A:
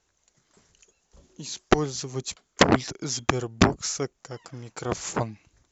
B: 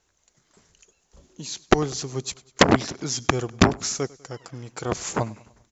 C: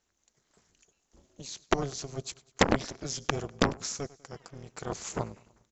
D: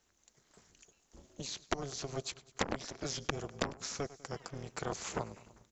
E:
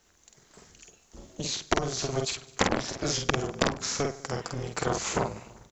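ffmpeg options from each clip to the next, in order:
ffmpeg -i in.wav -af "aecho=1:1:99|198|297|396:0.0794|0.0421|0.0223|0.0118,volume=2dB" out.wav
ffmpeg -i in.wav -af "tremolo=f=280:d=0.919,volume=-4dB" out.wav
ffmpeg -i in.wav -filter_complex "[0:a]acrossover=split=430|4400[link_01][link_02][link_03];[link_01]acompressor=threshold=-44dB:ratio=4[link_04];[link_02]acompressor=threshold=-40dB:ratio=4[link_05];[link_03]acompressor=threshold=-50dB:ratio=4[link_06];[link_04][link_05][link_06]amix=inputs=3:normalize=0,volume=3.5dB" out.wav
ffmpeg -i in.wav -filter_complex "[0:a]asplit=2[link_01][link_02];[link_02]adelay=48,volume=-3.5dB[link_03];[link_01][link_03]amix=inputs=2:normalize=0,volume=8.5dB" out.wav

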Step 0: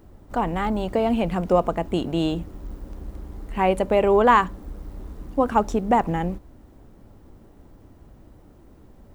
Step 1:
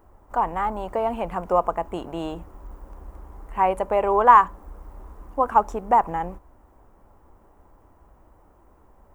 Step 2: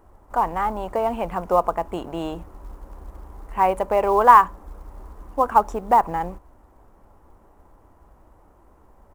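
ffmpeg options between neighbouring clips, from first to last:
ffmpeg -i in.wav -af "equalizer=frequency=125:width_type=o:width=1:gain=-8,equalizer=frequency=250:width_type=o:width=1:gain=-6,equalizer=frequency=1000:width_type=o:width=1:gain=10,equalizer=frequency=4000:width_type=o:width=1:gain=-10,volume=-4dB" out.wav
ffmpeg -i in.wav -af "aresample=32000,aresample=44100,acrusher=bits=8:mode=log:mix=0:aa=0.000001,volume=1.5dB" out.wav

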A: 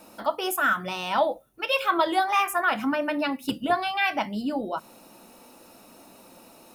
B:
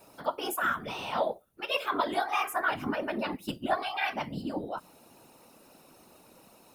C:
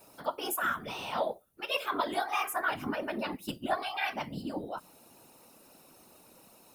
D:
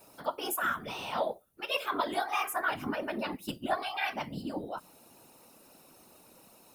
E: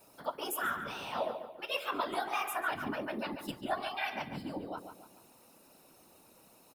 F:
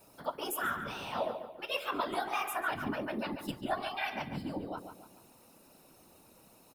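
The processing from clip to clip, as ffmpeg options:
ffmpeg -i in.wav -af "afftfilt=real='hypot(re,im)*cos(2*PI*random(0))':imag='hypot(re,im)*sin(2*PI*random(1))':win_size=512:overlap=0.75" out.wav
ffmpeg -i in.wav -af "highshelf=frequency=5900:gain=6,volume=-2.5dB" out.wav
ffmpeg -i in.wav -af anull out.wav
ffmpeg -i in.wav -filter_complex "[0:a]asplit=2[link_01][link_02];[link_02]adelay=142,lowpass=frequency=4100:poles=1,volume=-8dB,asplit=2[link_03][link_04];[link_04]adelay=142,lowpass=frequency=4100:poles=1,volume=0.42,asplit=2[link_05][link_06];[link_06]adelay=142,lowpass=frequency=4100:poles=1,volume=0.42,asplit=2[link_07][link_08];[link_08]adelay=142,lowpass=frequency=4100:poles=1,volume=0.42,asplit=2[link_09][link_10];[link_10]adelay=142,lowpass=frequency=4100:poles=1,volume=0.42[link_11];[link_01][link_03][link_05][link_07][link_09][link_11]amix=inputs=6:normalize=0,volume=-3.5dB" out.wav
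ffmpeg -i in.wav -af "lowshelf=frequency=180:gain=6.5" out.wav

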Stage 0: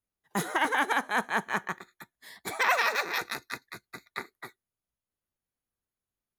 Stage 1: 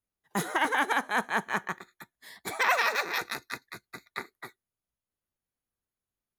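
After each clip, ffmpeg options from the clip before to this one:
ffmpeg -i in.wav -af anull out.wav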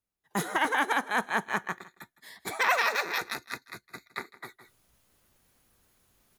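ffmpeg -i in.wav -af "aecho=1:1:161:0.112,areverse,acompressor=mode=upward:threshold=-47dB:ratio=2.5,areverse" out.wav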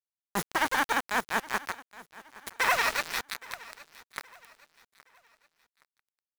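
ffmpeg -i in.wav -af "aeval=exprs='val(0)*gte(abs(val(0)),0.0422)':channel_layout=same,aecho=1:1:819|1638|2457:0.1|0.037|0.0137" out.wav

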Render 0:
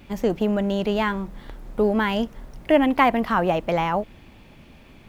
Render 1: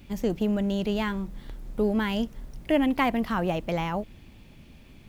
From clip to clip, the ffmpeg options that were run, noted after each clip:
ffmpeg -i in.wav -af "equalizer=frequency=950:width=0.39:gain=-8.5" out.wav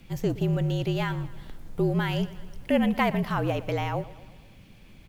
ffmpeg -i in.wav -af "afreqshift=-48,aecho=1:1:118|236|354|472|590:0.119|0.0677|0.0386|0.022|0.0125" out.wav

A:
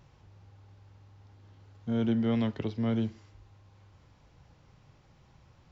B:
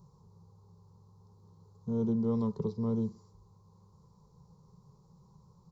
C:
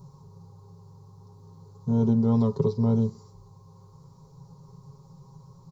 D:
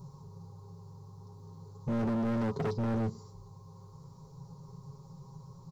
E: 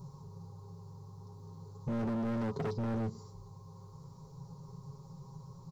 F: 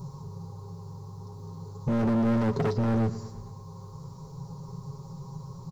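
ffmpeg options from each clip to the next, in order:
ffmpeg -i in.wav -af "firequalizer=gain_entry='entry(100,0);entry(180,15);entry(280,-10);entry(420,10);entry(650,-9);entry(1000,9);entry(1600,-22);entry(2900,-25);entry(4100,-1);entry(8000,7)':delay=0.05:min_phase=1,volume=-5.5dB" out.wav
ffmpeg -i in.wav -af "aecho=1:1:7.4:0.81,volume=7.5dB" out.wav
ffmpeg -i in.wav -af "volume=29dB,asoftclip=hard,volume=-29dB" out.wav
ffmpeg -i in.wav -af "acompressor=threshold=-33dB:ratio=6" out.wav
ffmpeg -i in.wav -af "aecho=1:1:114|228|342|456|570:0.133|0.0787|0.0464|0.0274|0.0162,volume=8.5dB" out.wav

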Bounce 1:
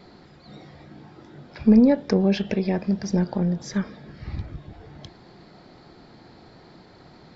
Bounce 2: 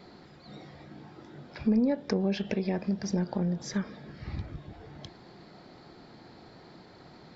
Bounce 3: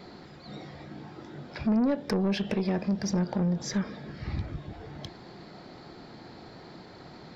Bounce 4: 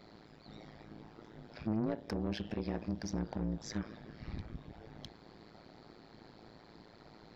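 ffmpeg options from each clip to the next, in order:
ffmpeg -i in.wav -af "lowshelf=frequency=71:gain=-6.5,acompressor=threshold=-26dB:ratio=2,volume=-2dB" out.wav
ffmpeg -i in.wav -af "asoftclip=type=tanh:threshold=-25dB,volume=4.5dB" out.wav
ffmpeg -i in.wav -af "tremolo=f=110:d=1,volume=-5.5dB" out.wav

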